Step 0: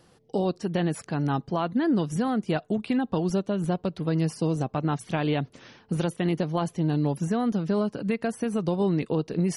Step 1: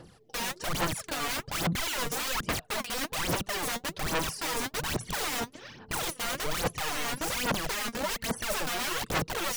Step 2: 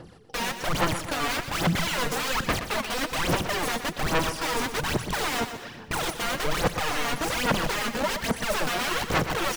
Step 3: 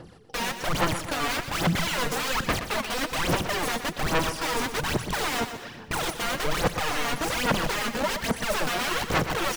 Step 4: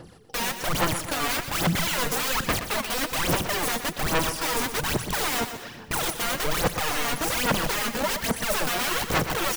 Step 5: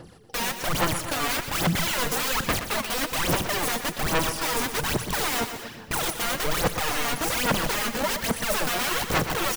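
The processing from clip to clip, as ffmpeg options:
ffmpeg -i in.wav -af "aeval=exprs='(mod(29.9*val(0)+1,2)-1)/29.9':channel_layout=same,aphaser=in_gain=1:out_gain=1:delay=4.3:decay=0.69:speed=1.2:type=sinusoidal" out.wav
ffmpeg -i in.wav -filter_complex "[0:a]highshelf=frequency=5100:gain=-8,asplit=2[link_01][link_02];[link_02]aecho=0:1:122|244|366|488:0.316|0.133|0.0558|0.0234[link_03];[link_01][link_03]amix=inputs=2:normalize=0,volume=5.5dB" out.wav
ffmpeg -i in.wav -af anull out.wav
ffmpeg -i in.wav -af "highshelf=frequency=8700:gain=10.5" out.wav
ffmpeg -i in.wav -af "aecho=1:1:235:0.15" out.wav

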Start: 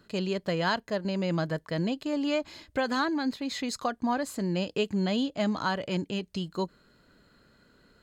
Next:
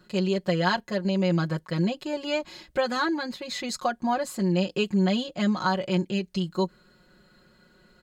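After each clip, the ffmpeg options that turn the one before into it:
ffmpeg -i in.wav -af "aecho=1:1:5.5:0.94" out.wav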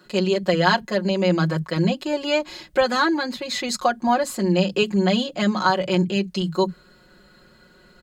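ffmpeg -i in.wav -filter_complex "[0:a]acrossover=split=180[link_01][link_02];[link_01]adelay=50[link_03];[link_03][link_02]amix=inputs=2:normalize=0,volume=6.5dB" out.wav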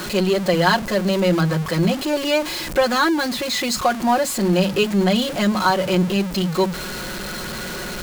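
ffmpeg -i in.wav -af "aeval=exprs='val(0)+0.5*0.0668*sgn(val(0))':channel_layout=same" out.wav

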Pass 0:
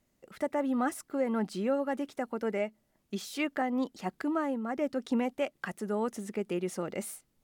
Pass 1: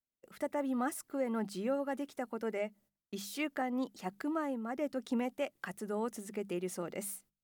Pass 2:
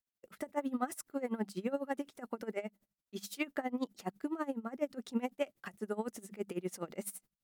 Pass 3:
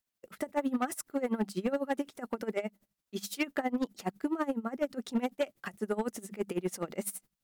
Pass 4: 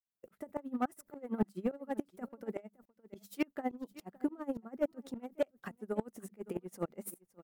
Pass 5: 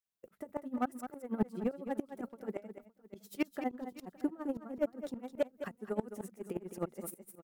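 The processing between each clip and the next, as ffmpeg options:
ffmpeg -i in.wav -af "agate=range=-23dB:threshold=-58dB:ratio=16:detection=peak,highshelf=frequency=10000:gain=9.5,bandreject=frequency=50:width_type=h:width=6,bandreject=frequency=100:width_type=h:width=6,bandreject=frequency=150:width_type=h:width=6,bandreject=frequency=200:width_type=h:width=6,volume=-4.5dB" out.wav
ffmpeg -i in.wav -af "aeval=exprs='val(0)*pow(10,-20*(0.5-0.5*cos(2*PI*12*n/s))/20)':channel_layout=same,volume=3.5dB" out.wav
ffmpeg -i in.wav -af "volume=28.5dB,asoftclip=hard,volume=-28.5dB,volume=5.5dB" out.wav
ffmpeg -i in.wav -af "equalizer=frequency=4300:width=0.35:gain=-10.5,aecho=1:1:563:0.106,aeval=exprs='val(0)*pow(10,-22*if(lt(mod(-3.5*n/s,1),2*abs(-3.5)/1000),1-mod(-3.5*n/s,1)/(2*abs(-3.5)/1000),(mod(-3.5*n/s,1)-2*abs(-3.5)/1000)/(1-2*abs(-3.5)/1000))/20)':channel_layout=same,volume=2.5dB" out.wav
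ffmpeg -i in.wav -af "aecho=1:1:212:0.316" out.wav

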